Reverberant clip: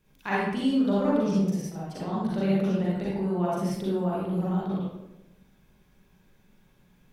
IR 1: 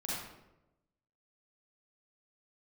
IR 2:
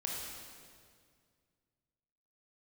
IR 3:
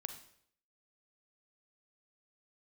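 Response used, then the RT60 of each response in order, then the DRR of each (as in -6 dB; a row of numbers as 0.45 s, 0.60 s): 1; 0.95 s, 2.0 s, 0.65 s; -7.5 dB, -3.0 dB, 7.5 dB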